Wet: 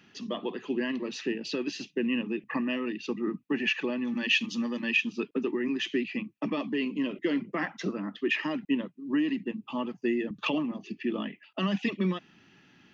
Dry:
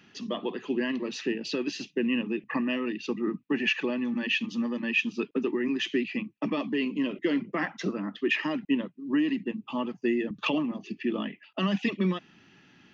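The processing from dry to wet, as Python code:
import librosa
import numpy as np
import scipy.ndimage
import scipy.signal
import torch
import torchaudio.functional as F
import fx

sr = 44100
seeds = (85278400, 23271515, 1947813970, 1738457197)

y = fx.high_shelf(x, sr, hz=3300.0, db=11.0, at=(4.07, 4.97))
y = y * 10.0 ** (-1.5 / 20.0)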